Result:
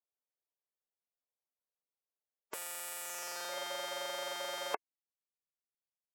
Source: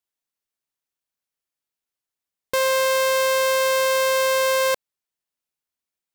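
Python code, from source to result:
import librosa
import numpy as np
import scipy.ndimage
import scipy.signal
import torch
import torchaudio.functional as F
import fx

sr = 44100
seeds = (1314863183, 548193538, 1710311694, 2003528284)

y = fx.filter_sweep_bandpass(x, sr, from_hz=3400.0, to_hz=1200.0, start_s=3.0, end_s=3.58, q=0.71)
y = fx.spec_gate(y, sr, threshold_db=-15, keep='weak')
y = fx.graphic_eq(y, sr, hz=(125, 500, 1000, 4000, 8000), db=(-3, 9, 5, -11, -5))
y = y * 10.0 ** (2.5 / 20.0)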